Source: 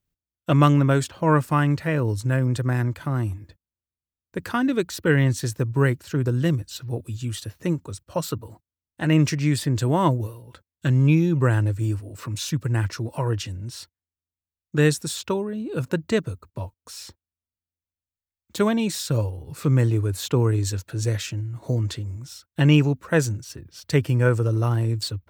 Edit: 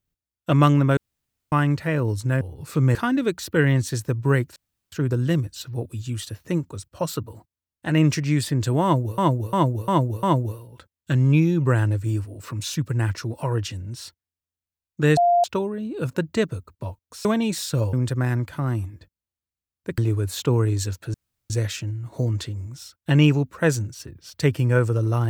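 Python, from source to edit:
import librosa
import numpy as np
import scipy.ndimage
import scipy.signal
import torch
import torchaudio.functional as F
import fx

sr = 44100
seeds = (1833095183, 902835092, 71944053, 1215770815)

y = fx.edit(x, sr, fx.room_tone_fill(start_s=0.97, length_s=0.55),
    fx.swap(start_s=2.41, length_s=2.05, other_s=19.3, other_length_s=0.54),
    fx.insert_room_tone(at_s=6.07, length_s=0.36),
    fx.repeat(start_s=9.98, length_s=0.35, count=5),
    fx.bleep(start_s=14.92, length_s=0.27, hz=698.0, db=-14.0),
    fx.cut(start_s=17.0, length_s=1.62),
    fx.insert_room_tone(at_s=21.0, length_s=0.36), tone=tone)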